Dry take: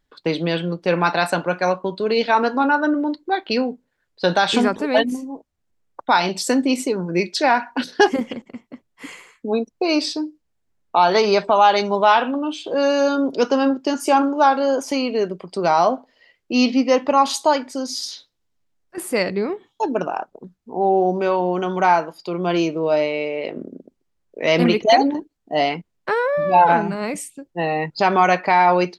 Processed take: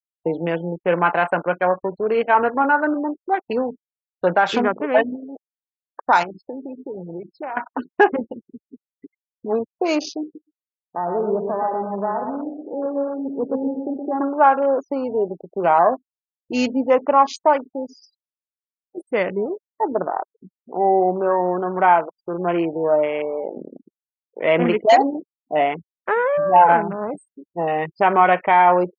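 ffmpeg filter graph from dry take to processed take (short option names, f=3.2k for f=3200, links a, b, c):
-filter_complex "[0:a]asettb=1/sr,asplit=3[a][b][c];[a]atrim=end=6.234[d];[b]atrim=start=6.23:end=7.57,asetpts=PTS-STARTPTS,afade=t=in:d=0.004:c=qsin,afade=t=out:st=1.336:d=0.004:c=qsin,lowpass=4.1k,acompressor=threshold=-27dB:ratio=5:attack=3.2:release=140:knee=1:detection=peak[e];[c]atrim=start=7.566[f];[d][e]acrossfade=d=0.004:c1=hsin:c2=qsin[g];[g][f]acrossfade=d=0.004:c1=qsin:c2=hsin,asettb=1/sr,asplit=3[h][i][j];[h]atrim=end=10.234[k];[i]atrim=start=10.23:end=14.21,asetpts=PTS-STARTPTS,afade=t=in:d=0.004:c=qsin,afade=t=out:st=3.976:d=0.004:c=qsin,bandpass=f=180:t=q:w=0.83,aecho=1:1:120|240|360|480|600|720:0.562|0.259|0.119|0.0547|0.0252|0.0116,atrim=end_sample=175518[l];[j]atrim=start=14.206[m];[k][l]acrossfade=d=0.004:c1=hsin:c2=qsin[n];[n][m]acrossfade=d=0.004:c1=qsin:c2=hsin,afwtdn=0.0447,afftfilt=real='re*gte(hypot(re,im),0.0141)':imag='im*gte(hypot(re,im),0.0141)':win_size=1024:overlap=0.75,equalizer=f=125:t=o:w=1:g=-6,equalizer=f=250:t=o:w=1:g=-5,equalizer=f=4k:t=o:w=1:g=-10,volume=2dB"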